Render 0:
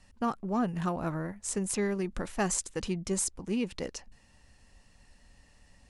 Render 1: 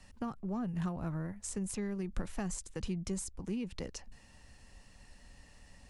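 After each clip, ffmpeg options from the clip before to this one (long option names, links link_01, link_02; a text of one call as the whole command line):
ffmpeg -i in.wav -filter_complex "[0:a]acrossover=split=160[link_01][link_02];[link_02]acompressor=threshold=-43dB:ratio=5[link_03];[link_01][link_03]amix=inputs=2:normalize=0,volume=2.5dB" out.wav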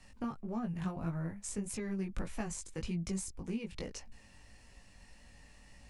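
ffmpeg -i in.wav -af "equalizer=frequency=2300:width=4.6:gain=4.5,flanger=delay=17.5:depth=3.2:speed=1.7,volume=2.5dB" out.wav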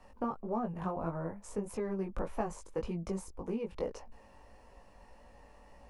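ffmpeg -i in.wav -af "equalizer=frequency=125:width_type=o:width=1:gain=-6,equalizer=frequency=500:width_type=o:width=1:gain=9,equalizer=frequency=1000:width_type=o:width=1:gain=9,equalizer=frequency=2000:width_type=o:width=1:gain=-5,equalizer=frequency=4000:width_type=o:width=1:gain=-6,equalizer=frequency=8000:width_type=o:width=1:gain=-10" out.wav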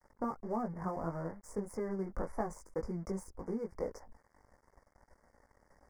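ffmpeg -i in.wav -af "aeval=exprs='sgn(val(0))*max(abs(val(0))-0.00168,0)':channel_layout=same,asuperstop=centerf=3200:order=20:qfactor=1.3,volume=-1dB" out.wav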